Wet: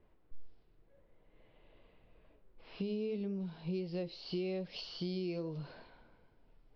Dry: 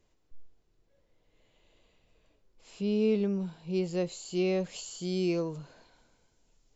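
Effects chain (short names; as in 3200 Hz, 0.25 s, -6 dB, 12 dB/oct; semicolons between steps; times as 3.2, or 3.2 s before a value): dynamic EQ 1200 Hz, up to -6 dB, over -50 dBFS, Q 1.2; flange 0.85 Hz, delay 4.6 ms, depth 3 ms, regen -77%; compressor 8:1, threshold -43 dBFS, peak gain reduction 14.5 dB; steep low-pass 5400 Hz 96 dB/oct; low-pass opened by the level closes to 1700 Hz, open at -45 dBFS; gain +8 dB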